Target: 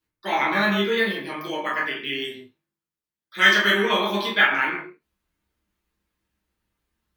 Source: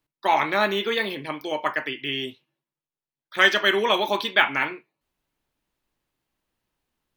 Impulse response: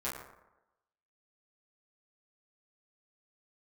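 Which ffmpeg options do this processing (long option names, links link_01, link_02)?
-filter_complex "[0:a]equalizer=frequency=690:width=0.78:gain=-9[link_01];[1:a]atrim=start_sample=2205,afade=type=out:start_time=0.25:duration=0.01,atrim=end_sample=11466[link_02];[link_01][link_02]afir=irnorm=-1:irlink=0,asplit=3[link_03][link_04][link_05];[link_03]afade=type=out:start_time=1.22:duration=0.02[link_06];[link_04]adynamicequalizer=threshold=0.02:dfrequency=4500:dqfactor=0.7:tfrequency=4500:tqfactor=0.7:attack=5:release=100:ratio=0.375:range=2.5:mode=boostabove:tftype=highshelf,afade=type=in:start_time=1.22:duration=0.02,afade=type=out:start_time=3.82:duration=0.02[link_07];[link_05]afade=type=in:start_time=3.82:duration=0.02[link_08];[link_06][link_07][link_08]amix=inputs=3:normalize=0,volume=1dB"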